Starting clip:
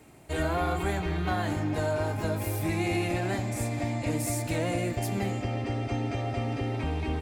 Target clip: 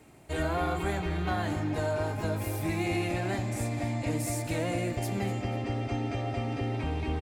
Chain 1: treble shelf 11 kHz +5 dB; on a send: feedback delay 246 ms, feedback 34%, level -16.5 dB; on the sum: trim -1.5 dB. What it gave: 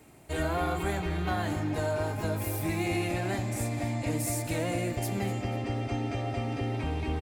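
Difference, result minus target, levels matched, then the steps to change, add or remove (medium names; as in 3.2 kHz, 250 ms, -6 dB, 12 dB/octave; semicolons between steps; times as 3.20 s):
8 kHz band +2.5 dB
change: treble shelf 11 kHz -3.5 dB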